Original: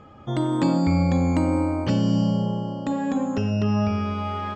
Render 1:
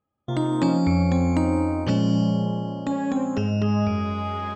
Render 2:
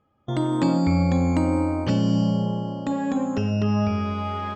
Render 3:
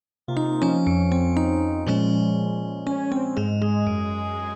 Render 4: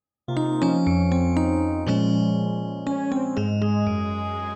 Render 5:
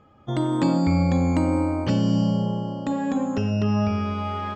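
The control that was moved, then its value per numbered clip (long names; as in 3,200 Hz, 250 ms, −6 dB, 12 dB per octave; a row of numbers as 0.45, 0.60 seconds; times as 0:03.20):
noise gate, range: −34, −21, −60, −46, −8 decibels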